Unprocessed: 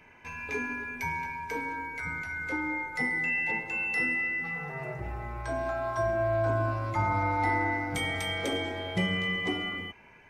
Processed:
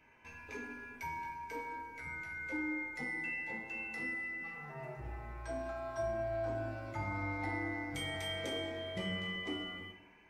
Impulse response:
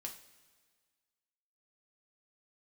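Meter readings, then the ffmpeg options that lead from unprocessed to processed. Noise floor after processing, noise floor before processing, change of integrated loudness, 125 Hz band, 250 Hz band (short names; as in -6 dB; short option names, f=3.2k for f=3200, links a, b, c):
-59 dBFS, -55 dBFS, -9.5 dB, -10.5 dB, -7.5 dB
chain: -filter_complex "[1:a]atrim=start_sample=2205[a];[0:a][a]afir=irnorm=-1:irlink=0,volume=-5dB"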